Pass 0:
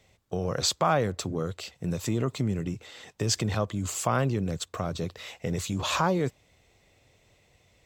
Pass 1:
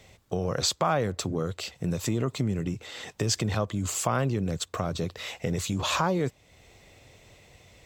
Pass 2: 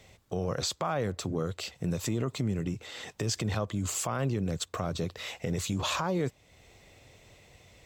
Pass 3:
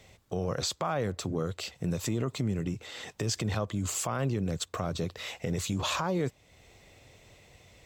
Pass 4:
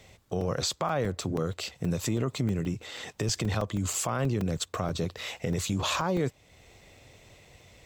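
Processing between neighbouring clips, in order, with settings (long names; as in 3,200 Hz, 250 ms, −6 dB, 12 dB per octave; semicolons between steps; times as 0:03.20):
downward compressor 1.5 to 1, threshold −47 dBFS, peak gain reduction 10 dB; level +8.5 dB
brickwall limiter −18.5 dBFS, peak gain reduction 6 dB; level −2 dB
no processing that can be heard
regular buffer underruns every 0.16 s, samples 128, zero, from 0:00.41; level +2 dB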